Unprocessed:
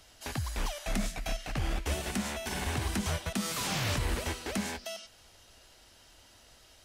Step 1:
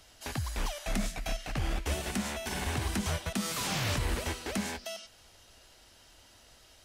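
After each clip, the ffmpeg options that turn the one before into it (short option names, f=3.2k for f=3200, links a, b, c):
-af anull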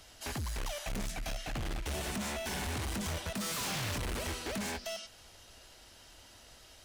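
-af "volume=36dB,asoftclip=hard,volume=-36dB,volume=2dB"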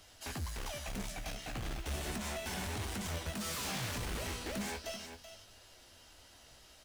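-filter_complex "[0:a]asplit=2[a][b];[b]aecho=0:1:381:0.316[c];[a][c]amix=inputs=2:normalize=0,flanger=delay=9.6:depth=8.1:regen=52:speed=0.36:shape=triangular,acrusher=bits=5:mode=log:mix=0:aa=0.000001,volume=1dB"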